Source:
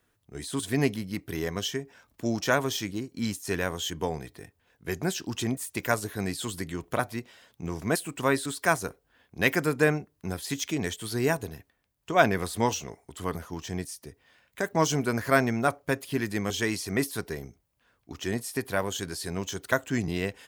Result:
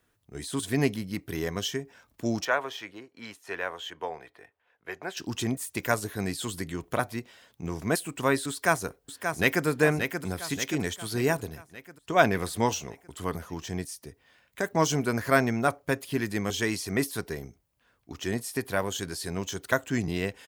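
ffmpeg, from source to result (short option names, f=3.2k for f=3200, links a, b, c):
-filter_complex "[0:a]asettb=1/sr,asplit=3[a][b][c];[a]atrim=end=2.454[d];[b]atrim=start=2.45:end=5.17,asetpts=PTS-STARTPTS,afade=t=in:d=0.004:c=qsin,afade=t=out:st=2.716:d=0.004:c=qsin,acrossover=split=460 3100:gain=0.1 1 0.141[e][f][g];[e][f][g]amix=inputs=3:normalize=0[h];[c]atrim=start=5.166[i];[d][h]acrossfade=d=0.004:c1=hsin:c2=qsin[j];[j][i]acrossfade=d=0.004:c1=qsin:c2=hsin,asplit=2[k][l];[l]afade=t=in:st=8.5:d=0.01,afade=t=out:st=9.66:d=0.01,aecho=0:1:580|1160|1740|2320|2900|3480|4060:0.473151|0.260233|0.143128|0.0787205|0.0432963|0.023813|0.0130971[m];[k][m]amix=inputs=2:normalize=0"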